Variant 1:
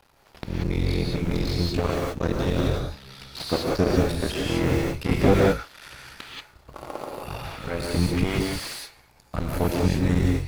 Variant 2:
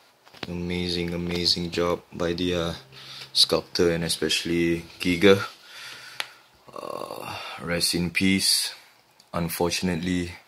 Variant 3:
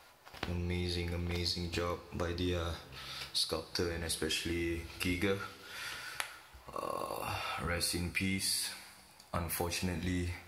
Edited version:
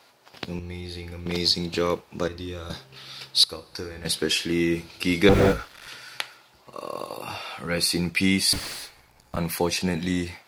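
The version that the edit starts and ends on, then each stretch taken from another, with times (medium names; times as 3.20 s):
2
0.59–1.26 s: from 3
2.28–2.70 s: from 3
3.44–4.05 s: from 3
5.29–5.88 s: from 1
8.53–9.37 s: from 1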